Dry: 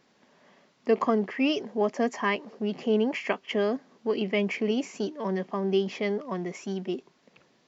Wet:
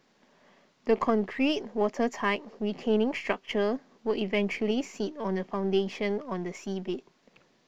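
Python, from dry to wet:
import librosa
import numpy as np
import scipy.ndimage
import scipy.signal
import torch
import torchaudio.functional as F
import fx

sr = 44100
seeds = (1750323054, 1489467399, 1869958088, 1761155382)

y = np.where(x < 0.0, 10.0 ** (-3.0 / 20.0) * x, x)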